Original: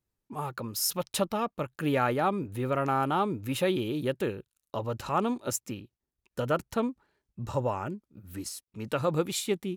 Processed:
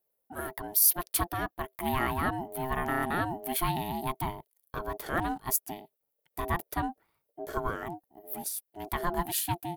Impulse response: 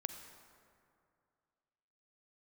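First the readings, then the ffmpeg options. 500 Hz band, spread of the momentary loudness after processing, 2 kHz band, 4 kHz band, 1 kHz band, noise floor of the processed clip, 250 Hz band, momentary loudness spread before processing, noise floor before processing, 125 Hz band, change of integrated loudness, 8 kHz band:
-7.0 dB, 12 LU, +2.5 dB, -3.0 dB, -0.5 dB, -82 dBFS, -5.0 dB, 13 LU, under -85 dBFS, -3.5 dB, -0.5 dB, +4.0 dB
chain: -af "aexciter=amount=5.9:drive=6:freq=10000,aeval=exprs='val(0)*sin(2*PI*520*n/s)':c=same"

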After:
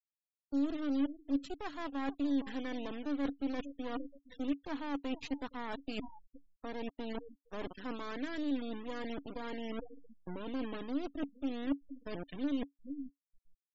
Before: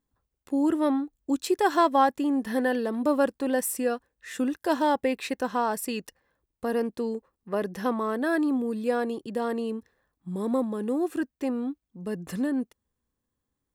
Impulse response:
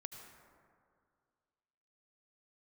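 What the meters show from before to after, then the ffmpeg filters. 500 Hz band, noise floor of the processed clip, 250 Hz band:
-16.0 dB, under -85 dBFS, -9.0 dB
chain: -filter_complex "[0:a]aresample=16000,acrusher=bits=3:dc=4:mix=0:aa=0.000001,aresample=44100,asplit=2[s0][s1];[s1]adelay=465,lowpass=f=1700:p=1,volume=0.0794,asplit=2[s2][s3];[s3]adelay=465,lowpass=f=1700:p=1,volume=0.46,asplit=2[s4][s5];[s5]adelay=465,lowpass=f=1700:p=1,volume=0.46[s6];[s0][s2][s4][s6]amix=inputs=4:normalize=0,adynamicequalizer=threshold=0.00355:dfrequency=3200:dqfactor=1.7:tfrequency=3200:tqfactor=1.7:attack=5:release=100:ratio=0.375:range=2.5:mode=boostabove:tftype=bell,afftfilt=real='re*gte(hypot(re,im),0.0178)':imag='im*gte(hypot(re,im),0.0178)':win_size=1024:overlap=0.75,areverse,acompressor=threshold=0.00891:ratio=8,areverse,equalizer=f=280:w=7.7:g=14,volume=1.58"

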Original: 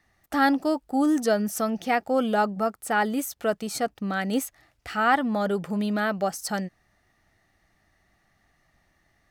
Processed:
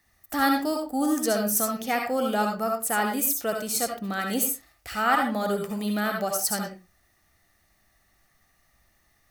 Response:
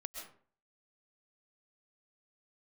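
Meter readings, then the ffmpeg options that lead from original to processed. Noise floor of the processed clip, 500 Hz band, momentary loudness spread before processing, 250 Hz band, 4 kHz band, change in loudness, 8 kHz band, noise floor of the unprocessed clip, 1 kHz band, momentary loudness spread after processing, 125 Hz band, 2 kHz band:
-66 dBFS, -1.5 dB, 8 LU, -2.5 dB, +2.5 dB, 0.0 dB, +8.0 dB, -69 dBFS, -1.0 dB, 6 LU, -2.5 dB, -1.0 dB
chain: -filter_complex "[0:a]aemphasis=mode=production:type=50fm[s0];[1:a]atrim=start_sample=2205,asetrate=83790,aresample=44100[s1];[s0][s1]afir=irnorm=-1:irlink=0,volume=2.24"

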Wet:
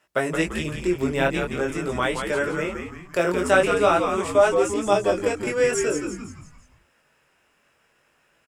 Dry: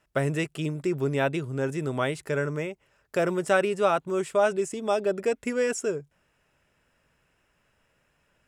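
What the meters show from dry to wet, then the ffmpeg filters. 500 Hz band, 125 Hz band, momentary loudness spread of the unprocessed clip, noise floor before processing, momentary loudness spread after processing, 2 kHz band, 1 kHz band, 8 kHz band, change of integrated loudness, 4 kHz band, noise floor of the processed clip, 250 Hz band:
+4.5 dB, -1.0 dB, 7 LU, -71 dBFS, 9 LU, +6.0 dB, +6.0 dB, +6.5 dB, +4.5 dB, +6.5 dB, -65 dBFS, +4.0 dB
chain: -filter_complex "[0:a]highpass=f=370:p=1,flanger=delay=16.5:depth=6.4:speed=0.46,asplit=2[s0][s1];[s1]asplit=5[s2][s3][s4][s5][s6];[s2]adelay=170,afreqshift=-100,volume=0.501[s7];[s3]adelay=340,afreqshift=-200,volume=0.226[s8];[s4]adelay=510,afreqshift=-300,volume=0.101[s9];[s5]adelay=680,afreqshift=-400,volume=0.0457[s10];[s6]adelay=850,afreqshift=-500,volume=0.0207[s11];[s7][s8][s9][s10][s11]amix=inputs=5:normalize=0[s12];[s0][s12]amix=inputs=2:normalize=0,volume=2.66"

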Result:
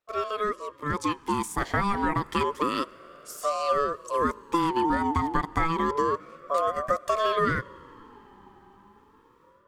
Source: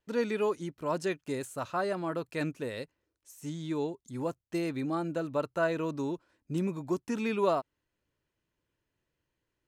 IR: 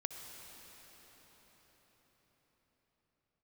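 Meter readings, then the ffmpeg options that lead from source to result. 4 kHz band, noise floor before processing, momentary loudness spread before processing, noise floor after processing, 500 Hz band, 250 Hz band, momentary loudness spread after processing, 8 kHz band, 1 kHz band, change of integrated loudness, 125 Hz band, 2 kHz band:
+8.5 dB, -85 dBFS, 9 LU, -58 dBFS, +2.5 dB, +2.5 dB, 7 LU, +7.5 dB, +12.5 dB, +6.0 dB, +3.5 dB, +7.5 dB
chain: -filter_complex "[0:a]dynaudnorm=f=860:g=3:m=4.73,lowshelf=f=150:t=q:w=1.5:g=-13.5,acompressor=threshold=0.1:ratio=6,asplit=2[s0][s1];[1:a]atrim=start_sample=2205,asetrate=39690,aresample=44100[s2];[s1][s2]afir=irnorm=-1:irlink=0,volume=0.168[s3];[s0][s3]amix=inputs=2:normalize=0,aeval=exprs='val(0)*sin(2*PI*740*n/s+740*0.2/0.29*sin(2*PI*0.29*n/s))':c=same"

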